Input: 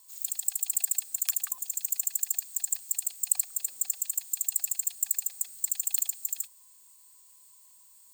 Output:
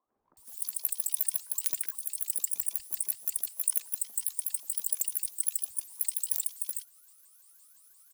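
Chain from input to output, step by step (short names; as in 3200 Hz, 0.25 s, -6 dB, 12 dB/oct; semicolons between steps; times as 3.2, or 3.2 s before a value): repeated pitch sweeps +8 st, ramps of 0.172 s; three bands offset in time mids, lows, highs 60/370 ms, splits 150/1000 Hz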